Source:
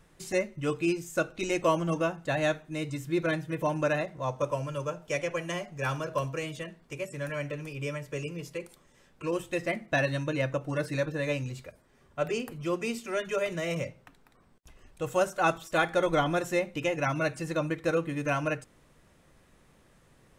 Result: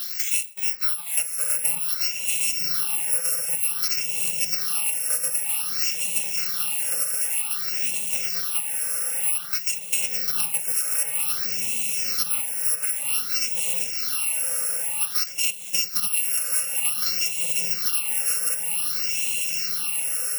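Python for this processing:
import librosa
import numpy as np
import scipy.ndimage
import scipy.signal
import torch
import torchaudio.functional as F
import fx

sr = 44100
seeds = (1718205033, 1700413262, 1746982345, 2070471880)

y = fx.bit_reversed(x, sr, seeds[0], block=128)
y = fx.filter_lfo_highpass(y, sr, shape='saw_down', hz=0.56, low_hz=260.0, high_hz=2700.0, q=0.8)
y = fx.echo_diffused(y, sr, ms=966, feedback_pct=50, wet_db=-4.5)
y = fx.phaser_stages(y, sr, stages=6, low_hz=250.0, high_hz=1400.0, hz=0.53, feedback_pct=25)
y = fx.band_squash(y, sr, depth_pct=100)
y = F.gain(torch.from_numpy(y), 6.0).numpy()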